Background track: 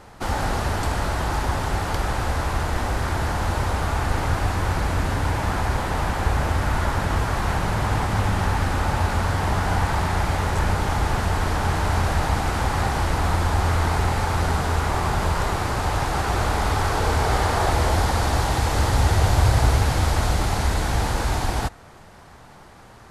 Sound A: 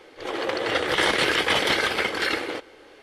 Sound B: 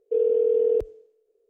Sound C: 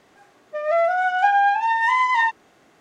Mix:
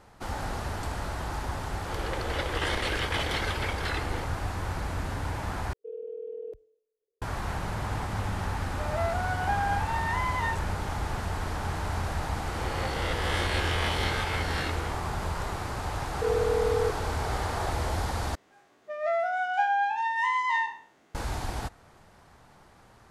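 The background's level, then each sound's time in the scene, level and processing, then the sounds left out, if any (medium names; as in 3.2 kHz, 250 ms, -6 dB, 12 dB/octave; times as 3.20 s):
background track -9.5 dB
1.64 s: add A -9.5 dB + warped record 45 rpm, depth 100 cents
5.73 s: replace with B -17.5 dB
8.25 s: add C -12 dB
12.36 s: add A -13 dB + reverse spectral sustain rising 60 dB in 1.39 s
16.10 s: add B -5.5 dB
18.35 s: replace with C -8.5 dB + spectral sustain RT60 0.46 s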